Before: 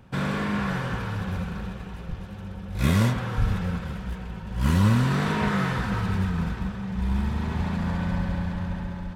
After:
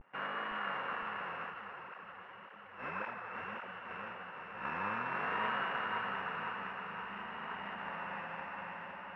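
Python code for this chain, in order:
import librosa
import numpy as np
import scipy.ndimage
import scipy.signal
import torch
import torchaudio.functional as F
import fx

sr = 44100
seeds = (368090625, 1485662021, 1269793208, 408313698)

y = np.r_[np.sort(x[:len(x) // 16 * 16].reshape(-1, 16), axis=1).ravel(), x[len(x) // 16 * 16:]]
y = scipy.signal.sosfilt(scipy.signal.bessel(2, 1300.0, 'highpass', norm='mag', fs=sr, output='sos'), y)
y = fx.vibrato(y, sr, rate_hz=0.57, depth_cents=71.0)
y = (np.kron(scipy.signal.resample_poly(y, 1, 4), np.eye(4)[0]) * 4)[:len(y)]
y = scipy.signal.sosfilt(scipy.signal.butter(4, 1700.0, 'lowpass', fs=sr, output='sos'), y)
y = fx.echo_feedback(y, sr, ms=512, feedback_pct=59, wet_db=-5.0)
y = fx.flanger_cancel(y, sr, hz=1.8, depth_ms=7.4, at=(1.5, 3.89), fade=0.02)
y = y * 10.0 ** (2.0 / 20.0)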